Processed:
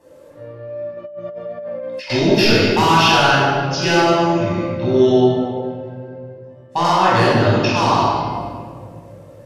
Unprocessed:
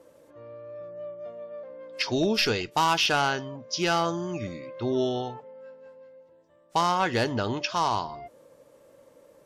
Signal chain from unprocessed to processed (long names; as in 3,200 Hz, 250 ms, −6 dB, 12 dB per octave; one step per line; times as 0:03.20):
convolution reverb RT60 1.9 s, pre-delay 16 ms, DRR −8.5 dB
0:00.97–0:02.10: compressor whose output falls as the input rises −28 dBFS, ratio −1
0:05.24–0:06.85: high-shelf EQ 6,300 Hz −9.5 dB
level −1 dB